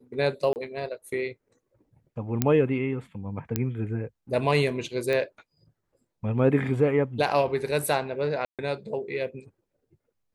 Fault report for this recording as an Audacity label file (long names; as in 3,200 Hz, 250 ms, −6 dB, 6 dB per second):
0.530000	0.560000	drop-out 29 ms
2.420000	2.420000	click −7 dBFS
3.560000	3.560000	click −10 dBFS
5.130000	5.130000	click −16 dBFS
8.450000	8.590000	drop-out 137 ms